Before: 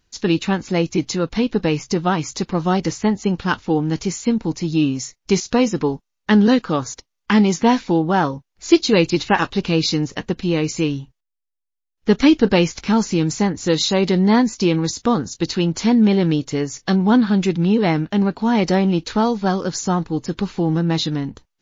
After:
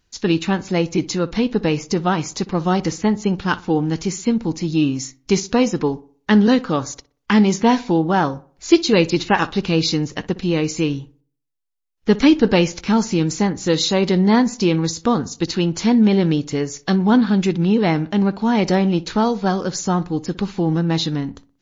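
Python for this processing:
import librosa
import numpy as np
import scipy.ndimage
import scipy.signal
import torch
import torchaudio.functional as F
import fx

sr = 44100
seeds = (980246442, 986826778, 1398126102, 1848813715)

y = fx.echo_filtered(x, sr, ms=61, feedback_pct=42, hz=2000.0, wet_db=-18.0)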